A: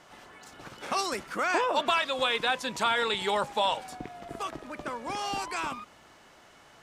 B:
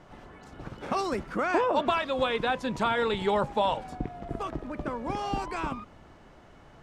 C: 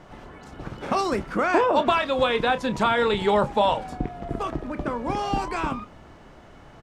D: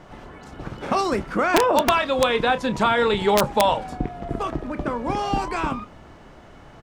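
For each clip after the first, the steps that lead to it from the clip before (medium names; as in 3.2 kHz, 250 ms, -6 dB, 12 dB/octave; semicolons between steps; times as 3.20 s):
tilt EQ -3.5 dB/octave
doubling 29 ms -13 dB; trim +5 dB
integer overflow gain 10 dB; trim +2 dB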